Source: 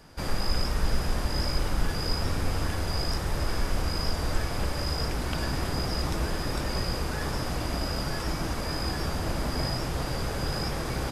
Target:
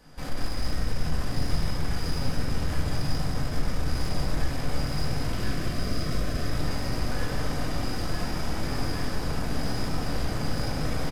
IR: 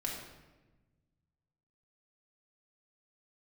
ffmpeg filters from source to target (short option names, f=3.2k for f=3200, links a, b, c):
-filter_complex "[0:a]aeval=exprs='(tanh(35.5*val(0)+0.55)-tanh(0.55))/35.5':c=same,asettb=1/sr,asplit=3[a][b][c];[a]atrim=end=5.304[d];[b]atrim=start=5.3:end=6.49,asetpts=PTS-STARTPTS,afade=t=in:d=0.004:c=qsin,afade=t=out:st=1.186:d=0.004:c=qsin,asuperstop=centerf=850:order=20:qfactor=3.2[e];[c]atrim=start=6.486[f];[d][e]acrossfade=d=0.004:c1=hsin:c2=qsin[g];[g][f]acrossfade=d=0.004:c1=qsin:c2=hsin,asplit=9[h][i][j][k][l][m][n][o][p];[i]adelay=181,afreqshift=47,volume=-6dB[q];[j]adelay=362,afreqshift=94,volume=-10.4dB[r];[k]adelay=543,afreqshift=141,volume=-14.9dB[s];[l]adelay=724,afreqshift=188,volume=-19.3dB[t];[m]adelay=905,afreqshift=235,volume=-23.7dB[u];[n]adelay=1086,afreqshift=282,volume=-28.2dB[v];[o]adelay=1267,afreqshift=329,volume=-32.6dB[w];[p]adelay=1448,afreqshift=376,volume=-37.1dB[x];[h][q][r][s][t][u][v][w][x]amix=inputs=9:normalize=0[y];[1:a]atrim=start_sample=2205[z];[y][z]afir=irnorm=-1:irlink=0"